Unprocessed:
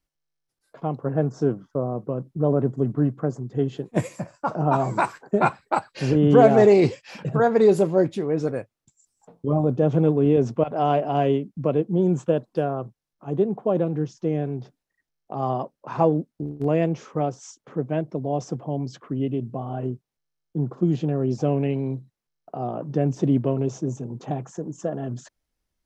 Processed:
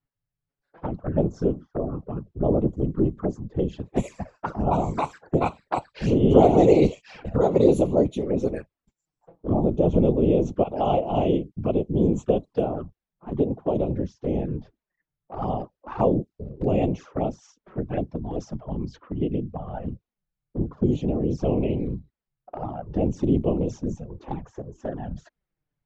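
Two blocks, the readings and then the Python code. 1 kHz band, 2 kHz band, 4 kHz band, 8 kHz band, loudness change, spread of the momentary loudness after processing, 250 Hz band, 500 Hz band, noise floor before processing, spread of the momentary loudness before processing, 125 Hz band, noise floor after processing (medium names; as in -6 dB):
-3.0 dB, -8.5 dB, -1.5 dB, no reading, -1.0 dB, 16 LU, -0.5 dB, -1.5 dB, -83 dBFS, 13 LU, -2.0 dB, under -85 dBFS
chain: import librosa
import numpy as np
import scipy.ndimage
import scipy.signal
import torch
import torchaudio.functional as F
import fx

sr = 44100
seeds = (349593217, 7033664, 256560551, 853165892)

y = fx.whisperise(x, sr, seeds[0])
y = fx.env_lowpass(y, sr, base_hz=2200.0, full_db=-17.5)
y = fx.env_flanger(y, sr, rest_ms=7.1, full_db=-20.0)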